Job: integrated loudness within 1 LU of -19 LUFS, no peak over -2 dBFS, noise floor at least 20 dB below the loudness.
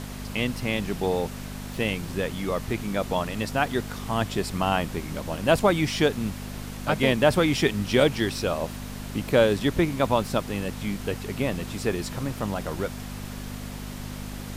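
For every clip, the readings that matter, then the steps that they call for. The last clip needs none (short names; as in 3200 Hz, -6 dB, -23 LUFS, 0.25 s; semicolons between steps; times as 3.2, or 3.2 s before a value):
hum 50 Hz; harmonics up to 250 Hz; hum level -34 dBFS; noise floor -36 dBFS; noise floor target -46 dBFS; loudness -26.0 LUFS; peak -8.0 dBFS; loudness target -19.0 LUFS
-> de-hum 50 Hz, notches 5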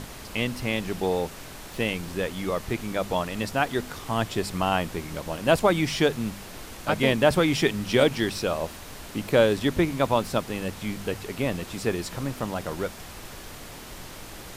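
hum none; noise floor -42 dBFS; noise floor target -47 dBFS
-> noise print and reduce 6 dB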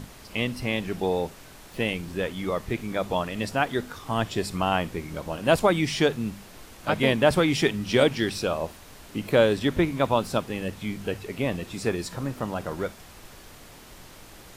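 noise floor -48 dBFS; loudness -26.5 LUFS; peak -8.0 dBFS; loudness target -19.0 LUFS
-> gain +7.5 dB; limiter -2 dBFS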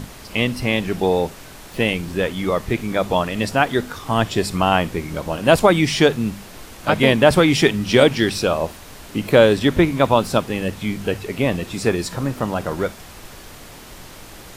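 loudness -19.0 LUFS; peak -2.0 dBFS; noise floor -40 dBFS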